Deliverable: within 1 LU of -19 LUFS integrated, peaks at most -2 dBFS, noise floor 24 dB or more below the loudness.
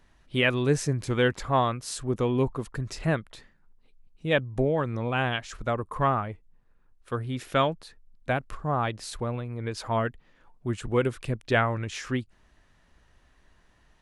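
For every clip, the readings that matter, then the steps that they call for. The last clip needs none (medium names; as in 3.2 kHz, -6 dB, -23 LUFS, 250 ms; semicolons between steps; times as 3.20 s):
loudness -28.0 LUFS; peak level -8.5 dBFS; loudness target -19.0 LUFS
-> trim +9 dB; peak limiter -2 dBFS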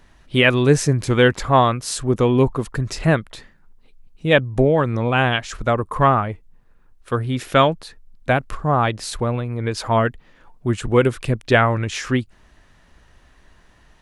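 loudness -19.5 LUFS; peak level -2.0 dBFS; noise floor -53 dBFS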